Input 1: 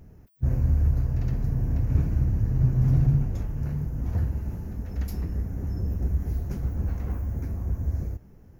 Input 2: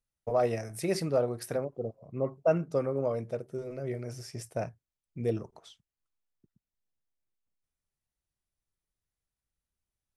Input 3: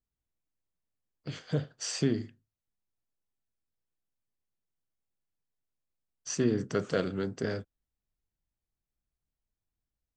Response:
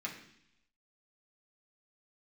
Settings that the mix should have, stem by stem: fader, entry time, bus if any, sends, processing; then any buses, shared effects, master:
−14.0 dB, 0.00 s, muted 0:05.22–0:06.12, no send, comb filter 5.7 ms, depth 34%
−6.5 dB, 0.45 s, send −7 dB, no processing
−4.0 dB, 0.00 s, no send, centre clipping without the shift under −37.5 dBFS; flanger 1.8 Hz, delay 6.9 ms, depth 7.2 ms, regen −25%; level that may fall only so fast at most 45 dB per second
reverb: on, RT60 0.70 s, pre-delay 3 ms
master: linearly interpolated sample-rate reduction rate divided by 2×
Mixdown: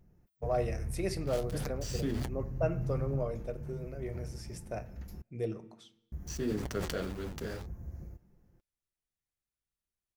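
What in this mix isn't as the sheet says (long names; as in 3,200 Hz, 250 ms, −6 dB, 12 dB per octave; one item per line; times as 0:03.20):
stem 2: entry 0.45 s → 0.15 s
master: missing linearly interpolated sample-rate reduction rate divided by 2×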